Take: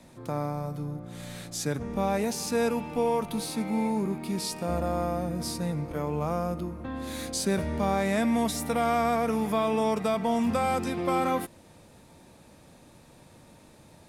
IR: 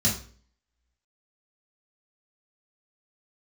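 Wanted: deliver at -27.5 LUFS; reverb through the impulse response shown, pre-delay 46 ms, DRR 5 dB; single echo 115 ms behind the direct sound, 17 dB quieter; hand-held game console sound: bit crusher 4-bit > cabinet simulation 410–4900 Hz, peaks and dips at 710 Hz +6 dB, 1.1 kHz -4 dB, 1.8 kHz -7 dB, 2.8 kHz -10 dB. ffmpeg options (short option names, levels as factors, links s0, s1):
-filter_complex "[0:a]aecho=1:1:115:0.141,asplit=2[s0][s1];[1:a]atrim=start_sample=2205,adelay=46[s2];[s1][s2]afir=irnorm=-1:irlink=0,volume=0.178[s3];[s0][s3]amix=inputs=2:normalize=0,acrusher=bits=3:mix=0:aa=0.000001,highpass=410,equalizer=f=710:t=q:w=4:g=6,equalizer=f=1100:t=q:w=4:g=-4,equalizer=f=1800:t=q:w=4:g=-7,equalizer=f=2800:t=q:w=4:g=-10,lowpass=f=4900:w=0.5412,lowpass=f=4900:w=1.3066,volume=0.794"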